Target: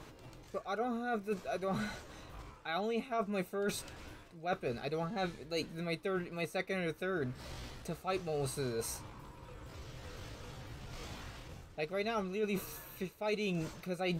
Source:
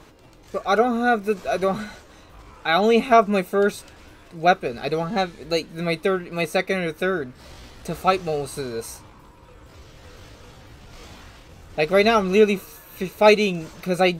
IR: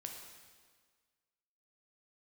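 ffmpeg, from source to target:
-af "areverse,acompressor=threshold=-30dB:ratio=6,areverse,equalizer=frequency=130:width=5.2:gain=6.5,volume=-4dB"

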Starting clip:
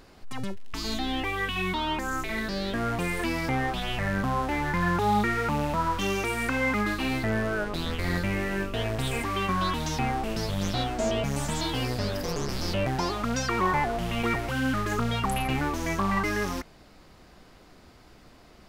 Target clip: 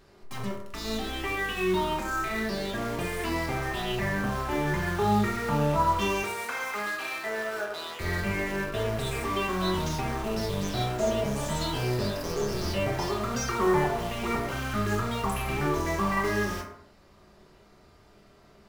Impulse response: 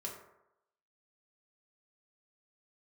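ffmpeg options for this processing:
-filter_complex "[0:a]asettb=1/sr,asplit=3[link_01][link_02][link_03];[link_01]atrim=end=6.234[link_04];[link_02]atrim=start=6.23:end=8,asetpts=PTS-STARTPTS,afade=type=in:duration=0.004:curve=qsin,afade=type=out:start_time=1.766:duration=0.004:curve=qsin,highpass=600[link_05];[link_03]atrim=start=7.996[link_06];[link_04][link_05]acrossfade=duration=0.004:curve1=hsin:curve2=qsin[link_07];[link_07][link_06]acrossfade=duration=0.004:curve1=qsin:curve2=hsin,asplit=2[link_08][link_09];[link_09]acrusher=bits=4:mix=0:aa=0.000001,volume=-8dB[link_10];[link_08][link_10]amix=inputs=2:normalize=0[link_11];[1:a]atrim=start_sample=2205,afade=type=out:start_time=0.35:duration=0.01,atrim=end_sample=15876[link_12];[link_11][link_12]afir=irnorm=-1:irlink=0,volume=-2.5dB"

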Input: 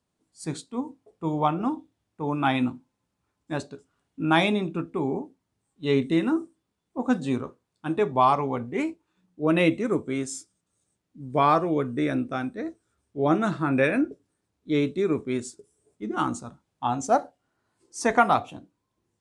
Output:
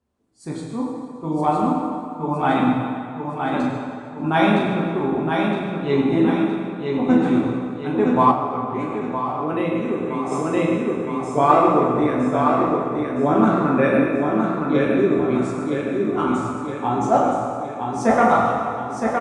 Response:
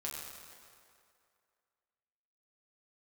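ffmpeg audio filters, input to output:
-filter_complex "[0:a]aecho=1:1:965|1930|2895|3860|4825|5790:0.596|0.292|0.143|0.0701|0.0343|0.0168[link_01];[1:a]atrim=start_sample=2205[link_02];[link_01][link_02]afir=irnorm=-1:irlink=0,asettb=1/sr,asplit=3[link_03][link_04][link_05];[link_03]atrim=end=8.314[link_06];[link_04]atrim=start=8.31:end=10.32,asetpts=PTS-STARTPTS,afade=type=in:duration=0.004:curve=qsin,afade=type=out:start_time=2.006:duration=0.004:curve=qsin,acompressor=threshold=-30dB:ratio=2[link_07];[link_05]atrim=start=10.316[link_08];[link_06][link_07]acrossfade=duration=0.004:curve1=hsin:curve2=qsin[link_09];[link_09][link_08]acrossfade=duration=0.004:curve1=qsin:curve2=hsin,highshelf=frequency=2100:gain=-11,volume=6.5dB"

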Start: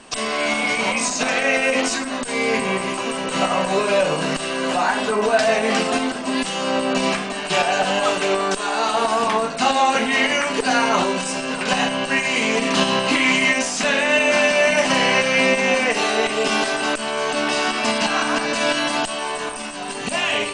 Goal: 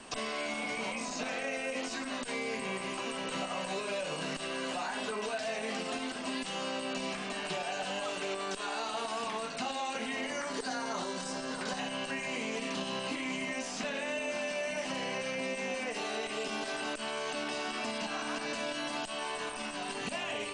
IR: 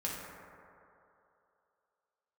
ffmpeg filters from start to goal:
-filter_complex "[0:a]asettb=1/sr,asplit=3[link_01][link_02][link_03];[link_01]atrim=end=10.304[link_04];[link_02]atrim=start=10.3:end=11.79,asetpts=PTS-STARTPTS,afade=type=in:duration=0.004:curve=qsin,afade=type=out:start_time=1.486:duration=0.004:curve=qsin,equalizer=frequency=2600:width_type=o:width=0.57:gain=-13[link_05];[link_03]atrim=start=11.786[link_06];[link_04][link_05]acrossfade=duration=0.004:curve1=hsin:curve2=qsin[link_07];[link_07][link_06]acrossfade=duration=0.004:curve1=qsin:curve2=hsin,acrossover=split=650|810[link_08][link_09][link_10];[link_10]alimiter=limit=-17.5dB:level=0:latency=1:release=75[link_11];[link_08][link_09][link_11]amix=inputs=3:normalize=0,acrossover=split=2000|5300[link_12][link_13][link_14];[link_12]acompressor=threshold=-32dB:ratio=4[link_15];[link_13]acompressor=threshold=-37dB:ratio=4[link_16];[link_14]acompressor=threshold=-46dB:ratio=4[link_17];[link_15][link_16][link_17]amix=inputs=3:normalize=0,volume=-5dB"

